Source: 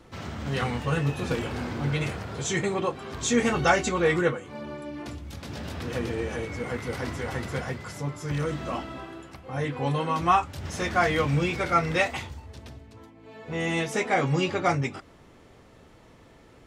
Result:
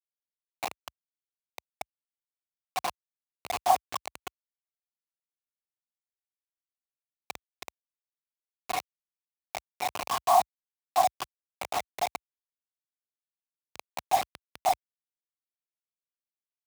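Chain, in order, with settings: resonant low shelf 500 Hz -14 dB, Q 3; whisper effect; Chebyshev shaper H 2 -10 dB, 7 -42 dB, 8 -27 dB, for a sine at 0.5 dBFS; cascade formant filter a; hum notches 60/120/180/240/300/360/420/480/540 Hz; bit crusher 5-bit; high-pass 60 Hz 24 dB/octave

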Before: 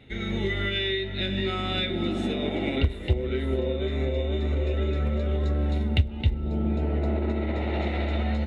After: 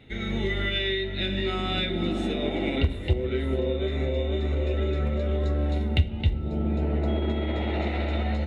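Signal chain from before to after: on a send at -12 dB: reverberation RT60 0.65 s, pre-delay 6 ms; 7.07–7.72 s: on the sum: whistle 3.3 kHz -44 dBFS

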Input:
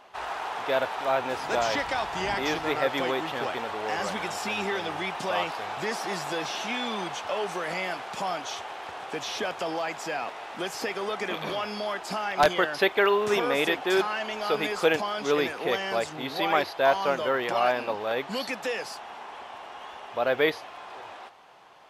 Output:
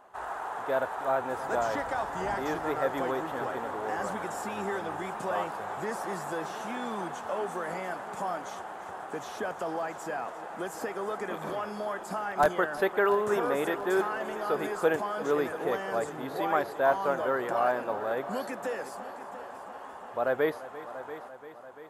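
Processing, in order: high-order bell 3.5 kHz -12.5 dB; multi-head delay 343 ms, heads first and second, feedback 59%, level -17 dB; trim -2.5 dB

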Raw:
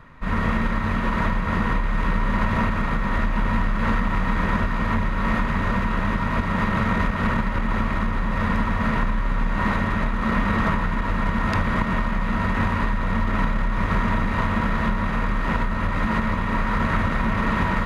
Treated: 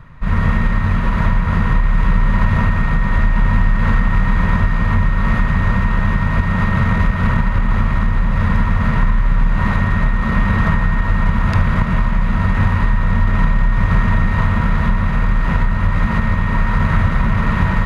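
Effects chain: resonant low shelf 190 Hz +7.5 dB, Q 1.5; feedback echo behind a band-pass 71 ms, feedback 77%, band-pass 1.4 kHz, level -12 dB; trim +1.5 dB

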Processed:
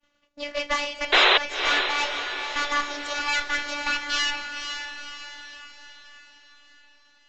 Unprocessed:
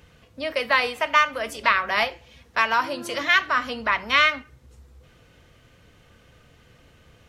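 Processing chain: pitch bend over the whole clip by +9.5 st starting unshifted; high-pass 41 Hz 6 dB/octave; expander -47 dBFS; bass shelf 340 Hz -8.5 dB; valve stage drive 25 dB, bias 0.75; in parallel at -10.5 dB: bit crusher 7-bit; on the sum: robot voice 291 Hz; painted sound noise, 1.12–1.38 s, 350–4100 Hz -21 dBFS; echo that smears into a reverb 501 ms, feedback 51%, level -7 dB; resampled via 16 kHz; trim +4 dB

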